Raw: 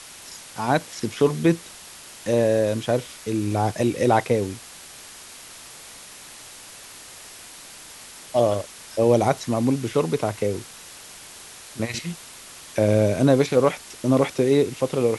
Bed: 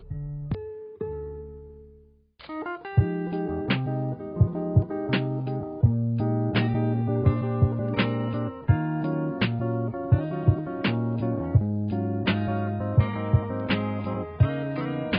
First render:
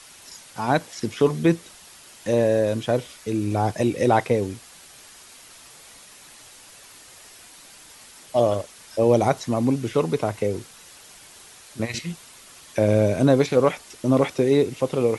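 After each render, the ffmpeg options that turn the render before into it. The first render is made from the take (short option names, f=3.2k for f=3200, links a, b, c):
-af "afftdn=nr=6:nf=-43"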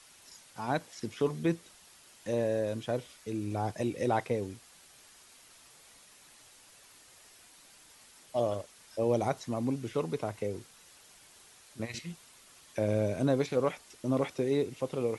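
-af "volume=-10.5dB"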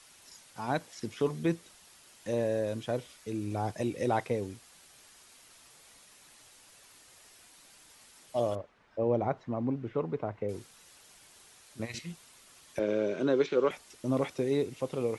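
-filter_complex "[0:a]asettb=1/sr,asplit=3[a][b][c];[a]atrim=end=8.554[d];[b]atrim=start=8.55:end=10.49,asetpts=PTS-STARTPTS,afade=t=in:d=0.004:c=qsin,afade=t=out:st=1.936:d=0.004:c=qsin,lowpass=1.7k[e];[c]atrim=start=10.486[f];[d][e]acrossfade=d=0.004:c1=hsin:c2=qsin[g];[g][f]acrossfade=d=0.004:c1=qsin:c2=hsin,asettb=1/sr,asplit=3[h][i][j];[h]atrim=end=12.794[k];[i]atrim=start=12.79:end=13.71,asetpts=PTS-STARTPTS,afade=t=in:d=0.004:c=qsin,afade=t=out:st=0.916:d=0.004:c=qsin,highpass=f=180:w=0.5412,highpass=f=180:w=1.3066,equalizer=f=240:t=q:w=4:g=-4,equalizer=f=380:t=q:w=4:g=9,equalizer=f=720:t=q:w=4:g=-7,equalizer=f=1.4k:t=q:w=4:g=6,equalizer=f=3.1k:t=q:w=4:g=5,equalizer=f=4.8k:t=q:w=4:g=-4,lowpass=f=5.9k:w=0.5412,lowpass=f=5.9k:w=1.3066[l];[j]atrim=start=13.706[m];[k][l]acrossfade=d=0.004:c1=hsin:c2=qsin[n];[n][m]acrossfade=d=0.004:c1=qsin:c2=hsin"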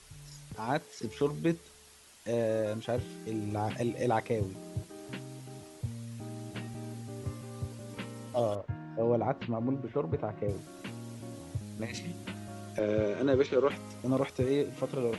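-filter_complex "[1:a]volume=-17dB[a];[0:a][a]amix=inputs=2:normalize=0"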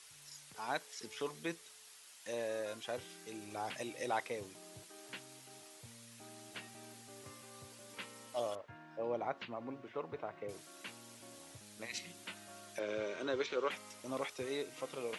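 -af "highpass=f=1.4k:p=1"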